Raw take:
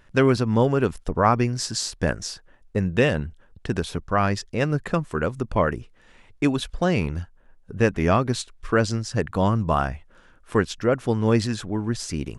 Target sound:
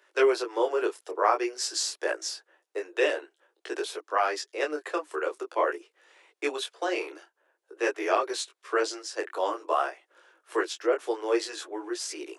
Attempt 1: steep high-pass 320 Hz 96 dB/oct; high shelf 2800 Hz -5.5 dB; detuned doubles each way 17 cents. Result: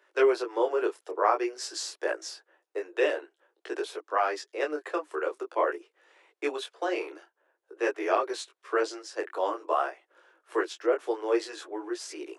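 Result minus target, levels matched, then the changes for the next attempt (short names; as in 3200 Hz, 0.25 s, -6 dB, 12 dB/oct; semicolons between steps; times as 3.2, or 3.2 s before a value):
4000 Hz band -4.5 dB
change: high shelf 2800 Hz +2 dB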